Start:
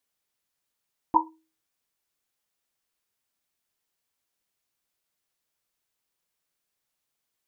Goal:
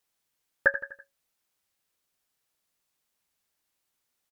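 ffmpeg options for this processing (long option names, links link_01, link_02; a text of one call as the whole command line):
ffmpeg -i in.wav -af "aecho=1:1:143|286|429|572:0.224|0.101|0.0453|0.0204,alimiter=limit=-12.5dB:level=0:latency=1:release=316,asetrate=76440,aresample=44100,volume=4.5dB" out.wav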